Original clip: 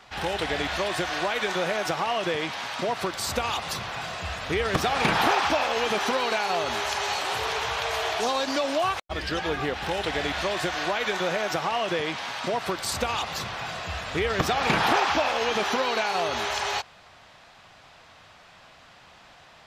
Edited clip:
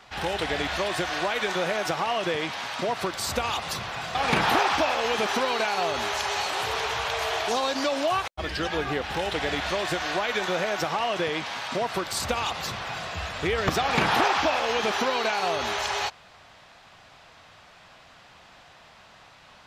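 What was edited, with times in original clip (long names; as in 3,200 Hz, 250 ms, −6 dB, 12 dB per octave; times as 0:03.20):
0:04.15–0:04.87: remove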